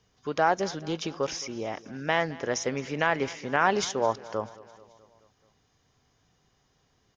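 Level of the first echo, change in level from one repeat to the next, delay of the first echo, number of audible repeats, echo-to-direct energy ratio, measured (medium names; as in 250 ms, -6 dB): -20.0 dB, -4.5 dB, 216 ms, 4, -18.0 dB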